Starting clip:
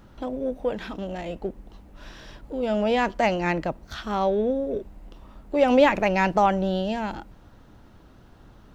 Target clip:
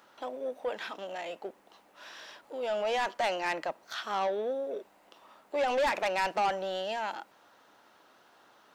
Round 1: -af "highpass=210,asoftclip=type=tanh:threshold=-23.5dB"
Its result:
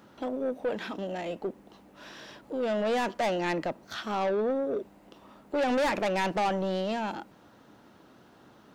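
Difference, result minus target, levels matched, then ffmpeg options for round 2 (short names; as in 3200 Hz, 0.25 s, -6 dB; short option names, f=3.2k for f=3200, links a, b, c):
250 Hz band +10.5 dB
-af "highpass=660,asoftclip=type=tanh:threshold=-23.5dB"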